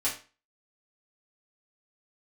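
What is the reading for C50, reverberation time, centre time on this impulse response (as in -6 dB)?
8.0 dB, 0.35 s, 24 ms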